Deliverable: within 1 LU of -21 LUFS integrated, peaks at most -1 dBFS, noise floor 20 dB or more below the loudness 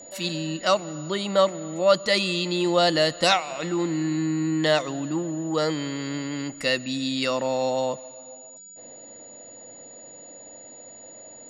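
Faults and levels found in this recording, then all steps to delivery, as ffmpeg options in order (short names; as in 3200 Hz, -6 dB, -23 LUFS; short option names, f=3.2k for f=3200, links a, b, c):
steady tone 6900 Hz; tone level -43 dBFS; loudness -24.5 LUFS; peak -5.0 dBFS; loudness target -21.0 LUFS
-> -af "bandreject=f=6.9k:w=30"
-af "volume=3.5dB"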